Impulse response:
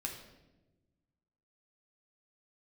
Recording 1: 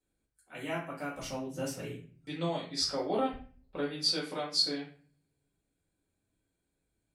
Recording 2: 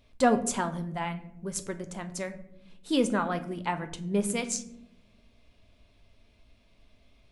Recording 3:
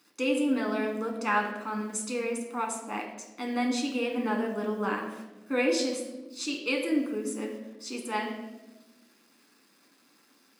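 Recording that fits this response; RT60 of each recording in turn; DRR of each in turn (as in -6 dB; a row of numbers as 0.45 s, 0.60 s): 3; 0.45 s, no single decay rate, 1.1 s; -6.5 dB, 8.0 dB, 0.0 dB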